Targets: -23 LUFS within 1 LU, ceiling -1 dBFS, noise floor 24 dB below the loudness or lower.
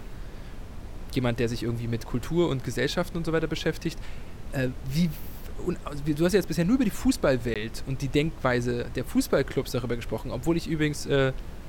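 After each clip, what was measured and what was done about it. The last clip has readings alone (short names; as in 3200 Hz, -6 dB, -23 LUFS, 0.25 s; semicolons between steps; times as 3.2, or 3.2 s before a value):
dropouts 1; longest dropout 17 ms; noise floor -40 dBFS; noise floor target -52 dBFS; loudness -27.5 LUFS; peak -10.0 dBFS; loudness target -23.0 LUFS
-> interpolate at 7.54, 17 ms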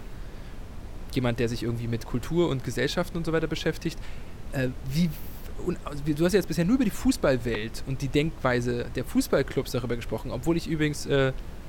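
dropouts 0; noise floor -40 dBFS; noise floor target -52 dBFS
-> noise print and reduce 12 dB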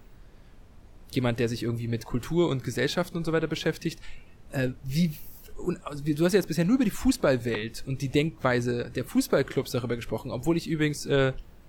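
noise floor -51 dBFS; noise floor target -52 dBFS
-> noise print and reduce 6 dB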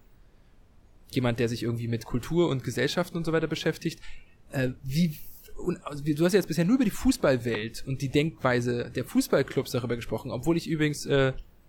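noise floor -57 dBFS; loudness -28.0 LUFS; peak -9.5 dBFS; loudness target -23.0 LUFS
-> gain +5 dB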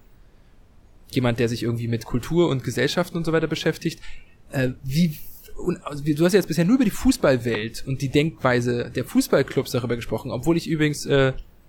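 loudness -23.0 LUFS; peak -4.5 dBFS; noise floor -52 dBFS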